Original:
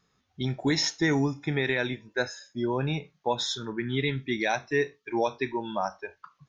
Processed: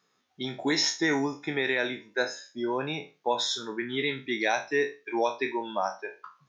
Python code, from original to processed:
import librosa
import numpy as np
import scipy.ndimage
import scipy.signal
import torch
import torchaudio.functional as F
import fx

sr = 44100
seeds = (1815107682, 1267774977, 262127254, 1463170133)

y = fx.spec_trails(x, sr, decay_s=0.3)
y = scipy.signal.sosfilt(scipy.signal.butter(2, 270.0, 'highpass', fs=sr, output='sos'), y)